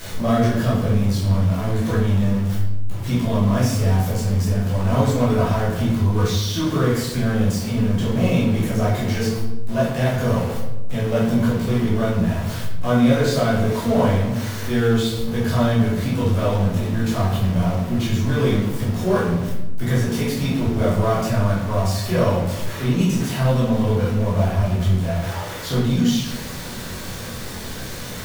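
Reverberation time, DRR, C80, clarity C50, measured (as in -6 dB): 0.95 s, -8.0 dB, 5.5 dB, 1.5 dB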